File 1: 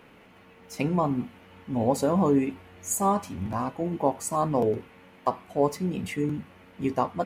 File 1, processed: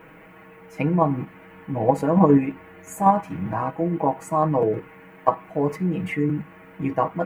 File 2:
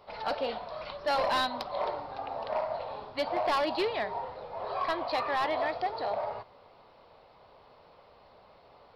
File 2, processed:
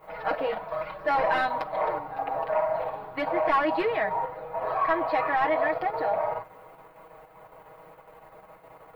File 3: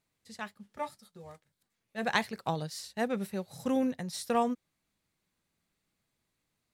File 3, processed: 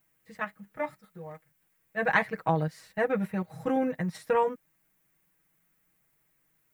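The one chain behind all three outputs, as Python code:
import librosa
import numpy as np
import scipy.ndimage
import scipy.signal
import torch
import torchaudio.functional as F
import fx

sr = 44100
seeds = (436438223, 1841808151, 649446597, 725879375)

p1 = fx.notch(x, sr, hz=1200.0, q=25.0)
p2 = fx.dmg_noise_colour(p1, sr, seeds[0], colour='violet', level_db=-63.0)
p3 = p2 + 0.93 * np.pad(p2, (int(6.3 * sr / 1000.0), 0))[:len(p2)]
p4 = fx.level_steps(p3, sr, step_db=18)
p5 = p3 + (p4 * 10.0 ** (-0.5 / 20.0))
p6 = fx.high_shelf_res(p5, sr, hz=2900.0, db=-13.0, q=1.5)
y = p6 * 10.0 ** (-1.0 / 20.0)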